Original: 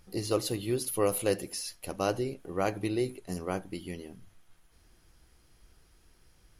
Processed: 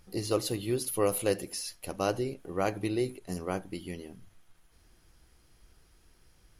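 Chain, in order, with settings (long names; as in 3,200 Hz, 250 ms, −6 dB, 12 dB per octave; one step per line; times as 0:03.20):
every ending faded ahead of time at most 420 dB per second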